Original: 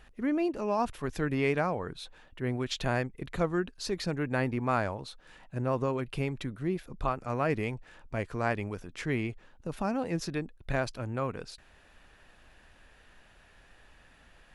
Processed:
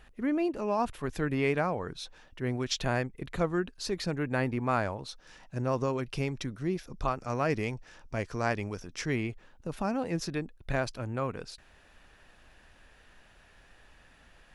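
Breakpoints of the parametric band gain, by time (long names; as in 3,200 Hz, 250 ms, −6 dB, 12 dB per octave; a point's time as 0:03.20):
parametric band 5,600 Hz 0.49 octaves
−1.5 dB
from 0:01.78 +9 dB
from 0:02.78 +1 dB
from 0:05.09 +12.5 dB
from 0:09.16 +2 dB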